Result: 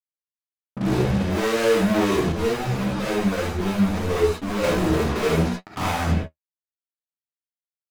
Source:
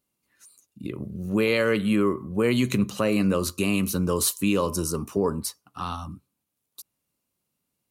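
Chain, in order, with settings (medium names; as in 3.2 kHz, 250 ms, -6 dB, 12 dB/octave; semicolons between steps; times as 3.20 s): Chebyshev low-pass 740 Hz, order 2; hum notches 60/120/180/240/300/360/420/480 Hz; fuzz box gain 52 dB, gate -50 dBFS; flange 0.52 Hz, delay 9.1 ms, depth 7.3 ms, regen +40%; gated-style reverb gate 90 ms rising, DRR -3 dB; 2.32–4.64 s: three-phase chorus; trim -7.5 dB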